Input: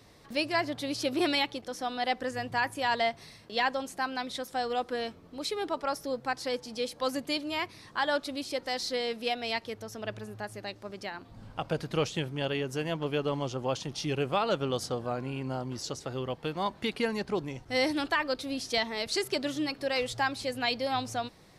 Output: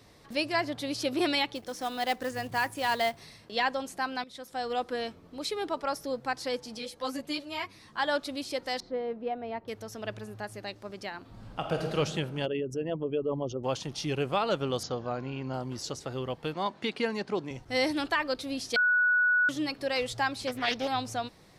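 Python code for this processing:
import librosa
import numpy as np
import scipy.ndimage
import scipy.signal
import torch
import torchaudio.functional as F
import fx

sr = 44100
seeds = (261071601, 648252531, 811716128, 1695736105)

y = fx.quant_float(x, sr, bits=2, at=(1.55, 3.2))
y = fx.ensemble(y, sr, at=(6.77, 7.98), fade=0.02)
y = fx.lowpass(y, sr, hz=1000.0, slope=12, at=(8.8, 9.68))
y = fx.reverb_throw(y, sr, start_s=11.2, length_s=0.75, rt60_s=1.8, drr_db=2.0)
y = fx.envelope_sharpen(y, sr, power=2.0, at=(12.45, 13.63), fade=0.02)
y = fx.cheby1_lowpass(y, sr, hz=7100.0, order=10, at=(14.83, 15.54))
y = fx.bandpass_edges(y, sr, low_hz=160.0, high_hz=7400.0, at=(16.54, 17.51))
y = fx.doppler_dist(y, sr, depth_ms=0.36, at=(20.47, 20.88))
y = fx.edit(y, sr, fx.fade_in_from(start_s=4.24, length_s=0.51, floor_db=-14.5),
    fx.bleep(start_s=18.76, length_s=0.73, hz=1470.0, db=-21.0), tone=tone)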